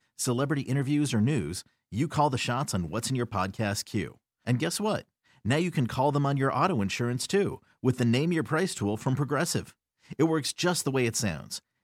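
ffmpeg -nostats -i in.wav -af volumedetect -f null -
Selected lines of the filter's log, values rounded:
mean_volume: -28.3 dB
max_volume: -11.2 dB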